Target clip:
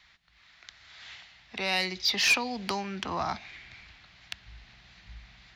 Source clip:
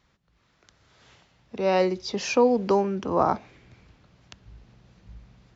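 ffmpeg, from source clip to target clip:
-filter_complex "[0:a]equalizer=f=700:t=o:w=0.54:g=7.5,acrossover=split=240|3000[s0][s1][s2];[s1]acompressor=threshold=0.0447:ratio=4[s3];[s0][s3][s2]amix=inputs=3:normalize=0,equalizer=f=125:t=o:w=1:g=-6,equalizer=f=250:t=o:w=1:g=-5,equalizer=f=500:t=o:w=1:g=-12,equalizer=f=2000:t=o:w=1:g=12,equalizer=f=4000:t=o:w=1:g=11,asoftclip=type=tanh:threshold=0.15"

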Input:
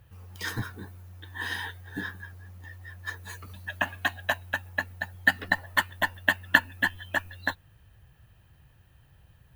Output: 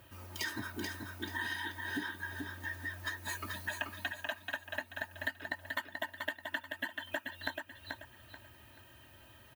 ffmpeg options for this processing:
-filter_complex "[0:a]highpass=160,aecho=1:1:3.2:0.97,acompressor=threshold=0.0112:ratio=16,asplit=2[s0][s1];[s1]aecho=0:1:434|868|1302|1736:0.562|0.174|0.054|0.0168[s2];[s0][s2]amix=inputs=2:normalize=0,volume=1.58"

